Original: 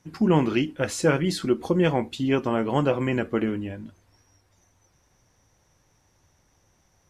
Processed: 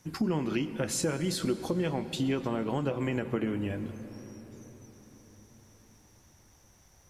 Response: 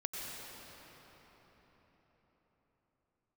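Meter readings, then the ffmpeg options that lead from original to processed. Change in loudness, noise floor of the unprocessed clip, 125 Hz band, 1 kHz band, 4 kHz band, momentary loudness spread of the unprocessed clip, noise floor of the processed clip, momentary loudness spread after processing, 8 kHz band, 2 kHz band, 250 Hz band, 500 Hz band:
-7.0 dB, -66 dBFS, -6.0 dB, -9.0 dB, -4.0 dB, 6 LU, -61 dBFS, 16 LU, +0.5 dB, -8.5 dB, -6.5 dB, -8.0 dB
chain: -filter_complex "[0:a]acompressor=threshold=-29dB:ratio=5,asplit=2[a][b];[1:a]atrim=start_sample=2205,lowshelf=f=120:g=9[c];[b][c]afir=irnorm=-1:irlink=0,volume=-12dB[d];[a][d]amix=inputs=2:normalize=0,acrossover=split=500[e][f];[f]acompressor=threshold=-35dB:ratio=2[g];[e][g]amix=inputs=2:normalize=0,crystalizer=i=1:c=0"

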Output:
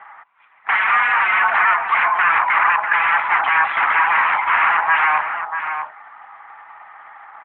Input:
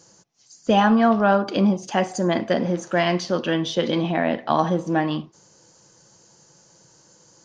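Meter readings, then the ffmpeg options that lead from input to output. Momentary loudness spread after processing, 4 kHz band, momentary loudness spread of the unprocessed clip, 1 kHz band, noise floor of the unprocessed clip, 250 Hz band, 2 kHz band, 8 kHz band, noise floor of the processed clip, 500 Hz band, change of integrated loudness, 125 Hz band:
9 LU, -2.0 dB, 6 LU, +9.0 dB, -56 dBFS, under -25 dB, +15.5 dB, n/a, -52 dBFS, -13.5 dB, +5.5 dB, under -25 dB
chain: -filter_complex "[0:a]alimiter=limit=-13.5dB:level=0:latency=1:release=19,aeval=exprs='0.211*sin(PI/2*5.62*val(0)/0.211)':c=same,asplit=2[a][b];[b]adelay=641.4,volume=-7dB,highshelf=f=4k:g=-14.4[c];[a][c]amix=inputs=2:normalize=0,highpass=f=520:t=q:w=0.5412,highpass=f=520:t=q:w=1.307,lowpass=f=2.1k:t=q:w=0.5176,lowpass=f=2.1k:t=q:w=0.7071,lowpass=f=2.1k:t=q:w=1.932,afreqshift=310,volume=4.5dB" -ar 8000 -c:a libopencore_amrnb -b:a 12200

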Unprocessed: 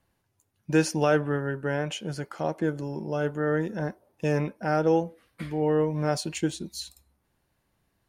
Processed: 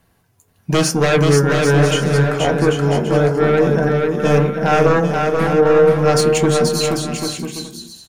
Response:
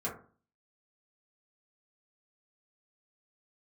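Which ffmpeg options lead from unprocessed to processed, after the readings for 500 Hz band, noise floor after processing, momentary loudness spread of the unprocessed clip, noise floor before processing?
+13.5 dB, -60 dBFS, 12 LU, -75 dBFS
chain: -filter_complex "[0:a]aeval=exprs='0.335*sin(PI/2*3.16*val(0)/0.335)':c=same,aecho=1:1:480|792|994.8|1127|1212:0.631|0.398|0.251|0.158|0.1,asplit=2[a][b];[1:a]atrim=start_sample=2205,highshelf=f=9.3k:g=9.5[c];[b][c]afir=irnorm=-1:irlink=0,volume=-6dB[d];[a][d]amix=inputs=2:normalize=0,volume=-4dB"

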